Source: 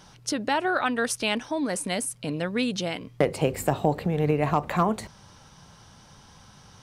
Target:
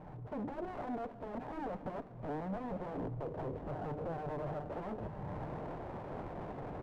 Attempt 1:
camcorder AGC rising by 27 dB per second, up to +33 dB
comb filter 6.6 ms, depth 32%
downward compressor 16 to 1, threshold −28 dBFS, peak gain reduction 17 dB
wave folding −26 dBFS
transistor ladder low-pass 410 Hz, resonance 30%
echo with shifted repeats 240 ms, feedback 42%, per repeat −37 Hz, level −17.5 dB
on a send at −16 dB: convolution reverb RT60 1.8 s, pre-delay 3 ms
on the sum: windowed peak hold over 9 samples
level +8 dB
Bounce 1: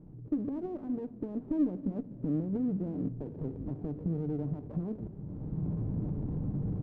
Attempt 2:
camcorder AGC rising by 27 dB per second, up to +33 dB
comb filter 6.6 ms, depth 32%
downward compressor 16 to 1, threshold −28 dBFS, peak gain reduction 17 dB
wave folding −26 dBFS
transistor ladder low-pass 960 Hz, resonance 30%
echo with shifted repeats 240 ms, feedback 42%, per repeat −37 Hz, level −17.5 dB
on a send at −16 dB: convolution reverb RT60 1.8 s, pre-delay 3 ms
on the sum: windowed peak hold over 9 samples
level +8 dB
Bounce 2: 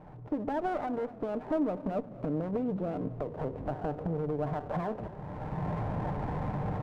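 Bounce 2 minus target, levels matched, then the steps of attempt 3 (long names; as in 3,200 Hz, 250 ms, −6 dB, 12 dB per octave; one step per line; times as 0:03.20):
wave folding: distortion −18 dB
camcorder AGC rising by 27 dB per second, up to +33 dB
comb filter 6.6 ms, depth 32%
downward compressor 16 to 1, threshold −28 dBFS, peak gain reduction 17 dB
wave folding −35 dBFS
transistor ladder low-pass 960 Hz, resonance 30%
echo with shifted repeats 240 ms, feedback 42%, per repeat −37 Hz, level −17.5 dB
on a send at −16 dB: convolution reverb RT60 1.8 s, pre-delay 3 ms
on the sum: windowed peak hold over 9 samples
level +8 dB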